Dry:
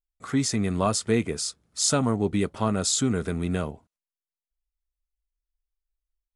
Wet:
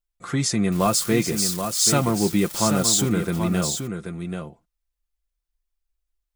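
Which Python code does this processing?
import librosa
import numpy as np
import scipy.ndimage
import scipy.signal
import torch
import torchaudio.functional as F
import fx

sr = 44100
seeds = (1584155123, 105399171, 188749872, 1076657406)

y = fx.crossing_spikes(x, sr, level_db=-26.5, at=(0.72, 3.09))
y = y + 0.56 * np.pad(y, (int(5.8 * sr / 1000.0), 0))[:len(y)]
y = y + 10.0 ** (-7.5 / 20.0) * np.pad(y, (int(782 * sr / 1000.0), 0))[:len(y)]
y = F.gain(torch.from_numpy(y), 2.5).numpy()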